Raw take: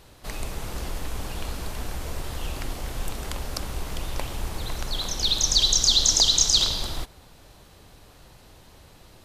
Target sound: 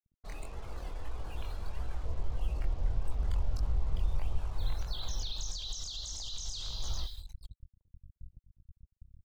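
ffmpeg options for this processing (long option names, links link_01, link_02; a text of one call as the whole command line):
ffmpeg -i in.wav -filter_complex "[0:a]acrossover=split=300|3000[link_01][link_02][link_03];[link_01]acompressor=threshold=-33dB:ratio=10[link_04];[link_04][link_02][link_03]amix=inputs=3:normalize=0,asettb=1/sr,asplit=3[link_05][link_06][link_07];[link_05]atrim=end=2.054[link_08];[link_06]atrim=start=2.05:end=4.37,asetpts=PTS-STARTPTS,afade=type=in:duration=0.004:curve=qsin,afade=type=out:start_time=2.316:duration=0.004:curve=qsin,tiltshelf=frequency=740:gain=3.5[link_09];[link_07]atrim=start=4.366[link_10];[link_08][link_09]acrossfade=duration=0.004:curve1=hsin:curve2=qsin[link_11];[link_11][link_10]acrossfade=duration=0.004:curve1=qsin:curve2=hsin,aecho=1:1:442|884:0.158|0.0269,afftfilt=real='re*gte(hypot(re,im),0.0158)':imag='im*gte(hypot(re,im),0.0158)':win_size=1024:overlap=0.75,flanger=delay=19:depth=5.2:speed=1.6,acrusher=bits=7:mix=0:aa=0.5,acompressor=threshold=-27dB:ratio=6,alimiter=level_in=3.5dB:limit=-24dB:level=0:latency=1:release=23,volume=-3.5dB,asubboost=boost=9:cutoff=100,volume=-6dB" out.wav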